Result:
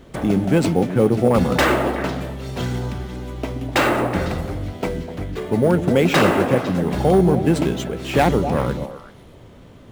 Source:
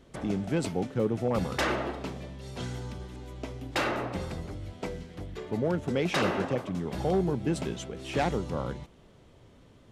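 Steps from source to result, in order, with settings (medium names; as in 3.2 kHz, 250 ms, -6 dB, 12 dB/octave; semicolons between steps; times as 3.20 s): in parallel at -6 dB: sample-rate reducer 10 kHz, jitter 0%; on the sum: repeats whose band climbs or falls 125 ms, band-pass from 240 Hz, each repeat 1.4 oct, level -5 dB; trim +8 dB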